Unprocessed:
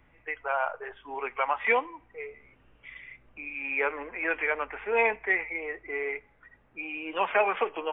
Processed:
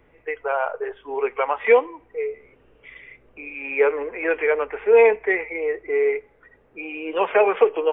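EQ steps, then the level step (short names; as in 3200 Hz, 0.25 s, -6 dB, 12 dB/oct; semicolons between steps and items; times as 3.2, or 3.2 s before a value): bell 440 Hz +13 dB 0.77 oct; +2.0 dB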